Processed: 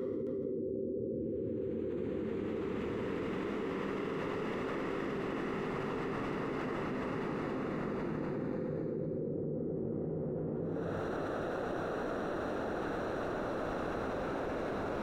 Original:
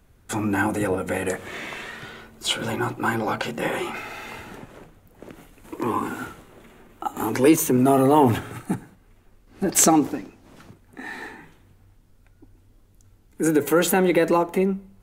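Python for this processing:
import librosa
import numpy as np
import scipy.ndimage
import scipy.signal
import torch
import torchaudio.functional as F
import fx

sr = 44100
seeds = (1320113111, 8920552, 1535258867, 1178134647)

p1 = fx.spec_dropout(x, sr, seeds[0], share_pct=34)
p2 = fx.hum_notches(p1, sr, base_hz=60, count=9)
p3 = fx.spec_erase(p2, sr, start_s=2.48, length_s=2.52, low_hz=550.0, high_hz=10000.0)
p4 = fx.weighting(p3, sr, curve='A')
p5 = fx.env_lowpass(p4, sr, base_hz=390.0, full_db=-22.0)
p6 = fx.high_shelf(p5, sr, hz=2800.0, db=2.0)
p7 = fx.leveller(p6, sr, passes=5)
p8 = fx.paulstretch(p7, sr, seeds[1], factor=14.0, window_s=0.5, from_s=4.22)
p9 = p8 + fx.echo_single(p8, sr, ms=268, db=-6.0, dry=0)
p10 = fx.env_flatten(p9, sr, amount_pct=100)
y = p10 * 10.0 ** (6.0 / 20.0)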